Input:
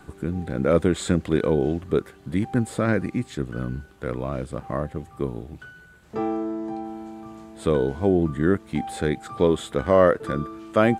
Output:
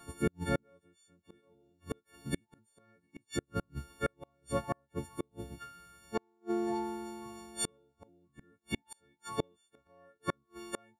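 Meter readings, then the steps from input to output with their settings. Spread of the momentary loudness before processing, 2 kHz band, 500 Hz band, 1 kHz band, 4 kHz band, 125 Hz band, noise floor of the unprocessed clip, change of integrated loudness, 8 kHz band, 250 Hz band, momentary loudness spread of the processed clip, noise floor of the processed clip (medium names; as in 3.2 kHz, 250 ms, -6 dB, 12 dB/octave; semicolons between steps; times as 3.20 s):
12 LU, -13.0 dB, -18.0 dB, -12.5 dB, -8.0 dB, -16.5 dB, -50 dBFS, -14.5 dB, -3.0 dB, -16.0 dB, 14 LU, -78 dBFS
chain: partials quantised in pitch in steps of 4 st; crackle 75 per s -51 dBFS; inverted gate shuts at -18 dBFS, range -37 dB; upward expansion 1.5:1, over -43 dBFS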